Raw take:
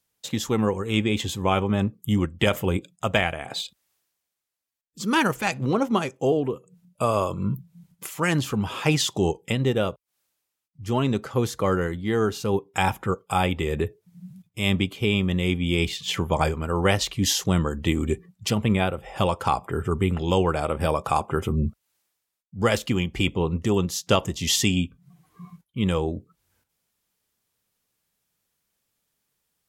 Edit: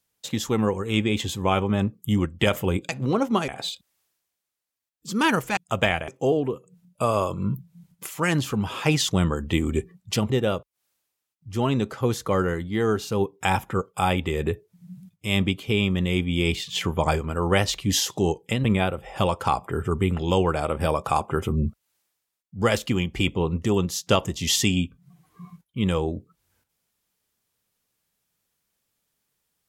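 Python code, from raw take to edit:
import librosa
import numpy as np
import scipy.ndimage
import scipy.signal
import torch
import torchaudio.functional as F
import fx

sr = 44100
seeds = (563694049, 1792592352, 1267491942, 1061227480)

y = fx.edit(x, sr, fx.swap(start_s=2.89, length_s=0.51, other_s=5.49, other_length_s=0.59),
    fx.swap(start_s=9.09, length_s=0.54, other_s=17.43, other_length_s=1.21), tone=tone)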